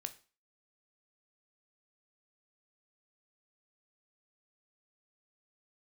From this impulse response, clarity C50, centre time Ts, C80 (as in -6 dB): 15.5 dB, 6 ms, 21.0 dB